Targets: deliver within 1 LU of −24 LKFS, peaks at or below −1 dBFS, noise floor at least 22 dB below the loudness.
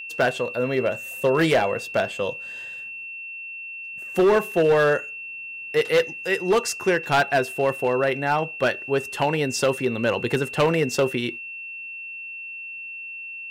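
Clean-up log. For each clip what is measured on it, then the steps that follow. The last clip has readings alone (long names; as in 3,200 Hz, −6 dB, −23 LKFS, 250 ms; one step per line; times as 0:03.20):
share of clipped samples 1.2%; peaks flattened at −13.5 dBFS; interfering tone 2,700 Hz; level of the tone −33 dBFS; integrated loudness −24.0 LKFS; sample peak −13.5 dBFS; target loudness −24.0 LKFS
→ clipped peaks rebuilt −13.5 dBFS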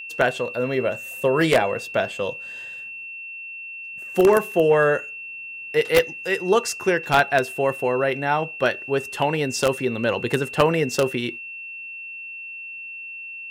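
share of clipped samples 0.0%; interfering tone 2,700 Hz; level of the tone −33 dBFS
→ notch filter 2,700 Hz, Q 30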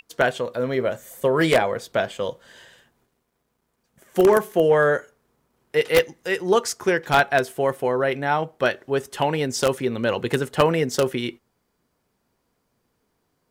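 interfering tone none found; integrated loudness −22.0 LKFS; sample peak −4.0 dBFS; target loudness −24.0 LKFS
→ level −2 dB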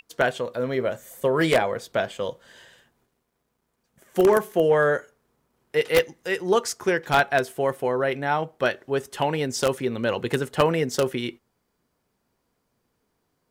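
integrated loudness −24.0 LKFS; sample peak −6.0 dBFS; background noise floor −75 dBFS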